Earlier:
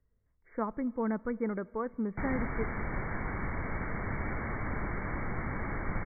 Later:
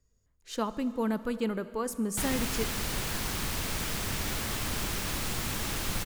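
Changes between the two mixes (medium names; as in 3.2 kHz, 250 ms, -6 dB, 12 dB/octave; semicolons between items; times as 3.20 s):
speech: send +11.0 dB; master: remove brick-wall FIR low-pass 2.3 kHz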